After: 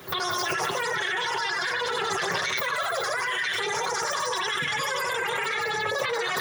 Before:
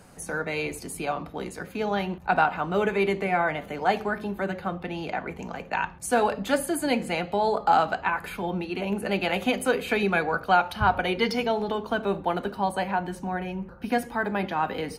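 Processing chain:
delay that plays each chunk backwards 245 ms, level −2 dB
high-shelf EQ 11,000 Hz +6 dB
on a send: echo through a band-pass that steps 218 ms, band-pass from 620 Hz, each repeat 1.4 octaves, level −2 dB
on the sum: brickwall limiter −19.5 dBFS, peak gain reduction 13.5 dB
multi-voice chorus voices 6, 0.3 Hz, delay 16 ms, depth 3.4 ms
wrong playback speed 33 rpm record played at 78 rpm
in parallel at +1.5 dB: compressor whose output falls as the input rises −36 dBFS, ratio −0.5
on the sum: high-pass filter 82 Hz

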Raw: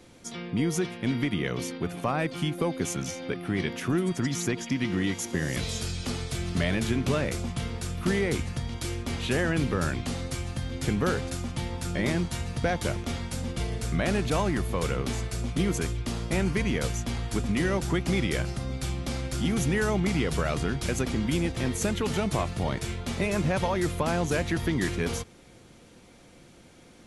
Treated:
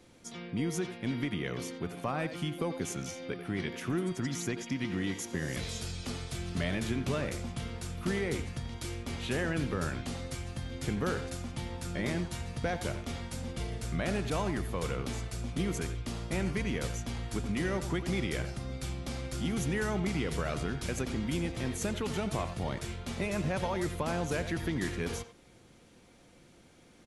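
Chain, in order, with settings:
far-end echo of a speakerphone 90 ms, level −10 dB
level −6 dB

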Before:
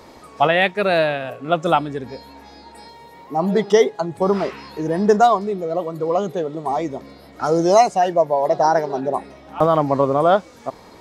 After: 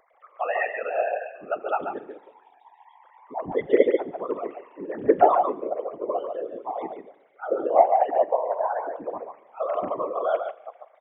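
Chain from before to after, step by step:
three sine waves on the formant tracks
0:07.68–0:08.64: Butterworth low-pass 2,600 Hz 36 dB per octave
on a send: single-tap delay 141 ms −5.5 dB
on the sum: spring reverb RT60 1.1 s, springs 37 ms, chirp 20 ms, DRR 17 dB
random phases in short frames
level −8 dB

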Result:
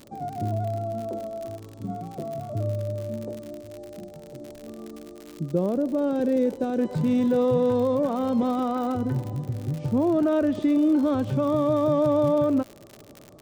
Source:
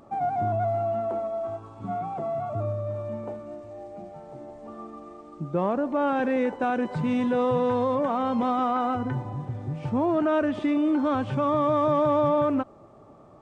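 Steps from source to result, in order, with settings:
flat-topped bell 1,500 Hz −15.5 dB 2.3 octaves, from 0:06.77 −9 dB
surface crackle 76 per second −35 dBFS
level +3 dB

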